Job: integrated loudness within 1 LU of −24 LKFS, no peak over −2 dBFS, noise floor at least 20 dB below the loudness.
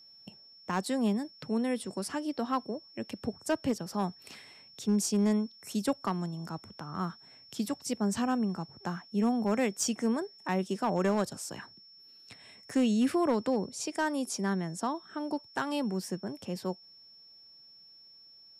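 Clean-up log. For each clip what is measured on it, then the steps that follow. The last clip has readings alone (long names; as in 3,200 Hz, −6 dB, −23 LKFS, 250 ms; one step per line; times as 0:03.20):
share of clipped samples 0.3%; peaks flattened at −20.5 dBFS; interfering tone 5,400 Hz; level of the tone −53 dBFS; integrated loudness −32.0 LKFS; sample peak −20.5 dBFS; target loudness −24.0 LKFS
→ clipped peaks rebuilt −20.5 dBFS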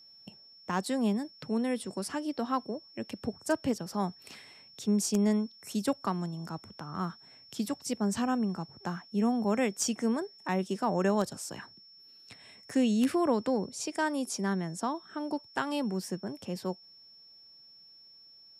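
share of clipped samples 0.0%; interfering tone 5,400 Hz; level of the tone −53 dBFS
→ notch filter 5,400 Hz, Q 30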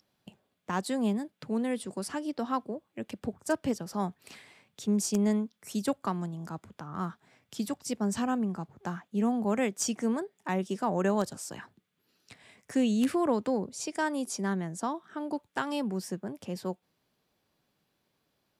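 interfering tone none found; integrated loudness −32.0 LKFS; sample peak −11.5 dBFS; target loudness −24.0 LKFS
→ level +8 dB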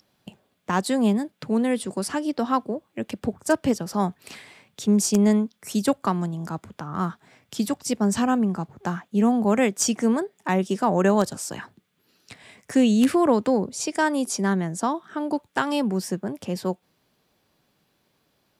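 integrated loudness −24.0 LKFS; sample peak −3.5 dBFS; background noise floor −70 dBFS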